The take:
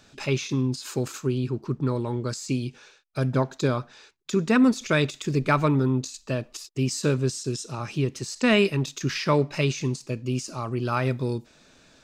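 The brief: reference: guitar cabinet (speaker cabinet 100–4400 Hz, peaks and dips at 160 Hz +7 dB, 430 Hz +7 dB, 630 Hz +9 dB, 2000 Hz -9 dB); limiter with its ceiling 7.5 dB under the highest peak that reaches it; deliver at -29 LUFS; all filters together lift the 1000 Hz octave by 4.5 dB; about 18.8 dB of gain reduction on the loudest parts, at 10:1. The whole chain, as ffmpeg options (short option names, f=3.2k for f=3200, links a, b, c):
-af "equalizer=f=1k:t=o:g=4.5,acompressor=threshold=-34dB:ratio=10,alimiter=level_in=6dB:limit=-24dB:level=0:latency=1,volume=-6dB,highpass=100,equalizer=f=160:t=q:w=4:g=7,equalizer=f=430:t=q:w=4:g=7,equalizer=f=630:t=q:w=4:g=9,equalizer=f=2k:t=q:w=4:g=-9,lowpass=f=4.4k:w=0.5412,lowpass=f=4.4k:w=1.3066,volume=9.5dB"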